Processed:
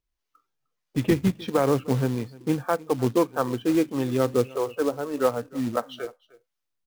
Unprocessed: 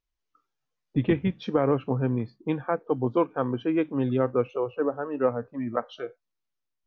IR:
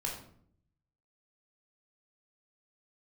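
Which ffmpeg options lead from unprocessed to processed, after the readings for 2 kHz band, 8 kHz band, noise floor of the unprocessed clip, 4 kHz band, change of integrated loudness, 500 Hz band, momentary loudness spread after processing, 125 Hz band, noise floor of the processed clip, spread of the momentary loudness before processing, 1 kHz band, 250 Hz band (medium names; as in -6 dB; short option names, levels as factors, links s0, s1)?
+2.5 dB, no reading, -82 dBFS, +7.0 dB, +2.0 dB, +1.5 dB, 7 LU, +1.5 dB, -82 dBFS, 7 LU, +2.0 dB, +2.0 dB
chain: -filter_complex "[0:a]acrossover=split=510[s0][s1];[s0]aeval=exprs='val(0)*(1-0.5/2+0.5/2*cos(2*PI*1.6*n/s))':c=same[s2];[s1]aeval=exprs='val(0)*(1-0.5/2-0.5/2*cos(2*PI*1.6*n/s))':c=same[s3];[s2][s3]amix=inputs=2:normalize=0,aecho=1:1:305:0.0794,acrusher=bits=4:mode=log:mix=0:aa=0.000001,volume=1.58"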